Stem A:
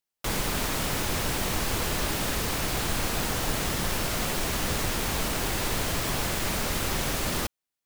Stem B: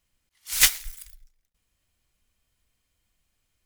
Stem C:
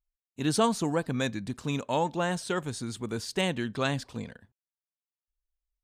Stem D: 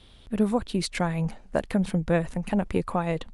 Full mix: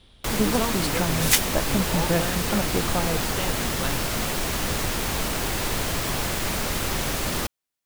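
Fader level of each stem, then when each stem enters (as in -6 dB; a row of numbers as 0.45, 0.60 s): +2.0, -2.0, -4.0, -1.0 dB; 0.00, 0.70, 0.00, 0.00 s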